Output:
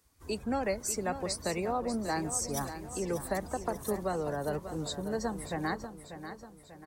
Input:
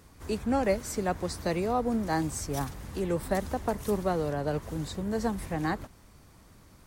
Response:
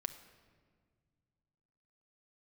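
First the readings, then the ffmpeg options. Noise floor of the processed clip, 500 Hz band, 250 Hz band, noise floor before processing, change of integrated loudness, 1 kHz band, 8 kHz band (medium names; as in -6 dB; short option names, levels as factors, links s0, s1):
-55 dBFS, -3.5 dB, -5.0 dB, -56 dBFS, -3.0 dB, -3.0 dB, +4.0 dB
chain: -filter_complex "[0:a]lowshelf=f=260:g=-7.5,afftdn=nr=16:nf=-44,highshelf=f=4000:g=10,acrossover=split=170[s0][s1];[s1]acompressor=threshold=0.0282:ratio=2[s2];[s0][s2]amix=inputs=2:normalize=0,asplit=2[s3][s4];[s4]aecho=0:1:591|1182|1773|2364|2955:0.299|0.143|0.0688|0.033|0.0158[s5];[s3][s5]amix=inputs=2:normalize=0"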